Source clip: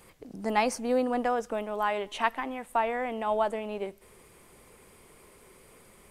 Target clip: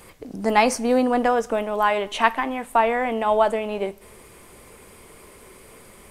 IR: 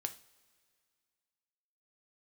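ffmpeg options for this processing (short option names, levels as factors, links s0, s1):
-filter_complex "[0:a]asplit=2[s0][s1];[1:a]atrim=start_sample=2205,asetrate=61740,aresample=44100[s2];[s1][s2]afir=irnorm=-1:irlink=0,volume=1.5[s3];[s0][s3]amix=inputs=2:normalize=0,volume=1.41"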